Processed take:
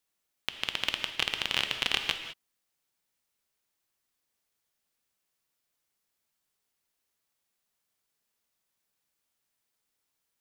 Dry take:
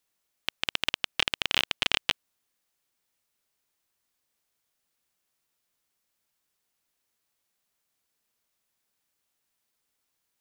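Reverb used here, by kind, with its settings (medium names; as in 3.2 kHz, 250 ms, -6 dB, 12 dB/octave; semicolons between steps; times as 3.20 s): gated-style reverb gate 230 ms flat, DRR 6.5 dB; trim -3 dB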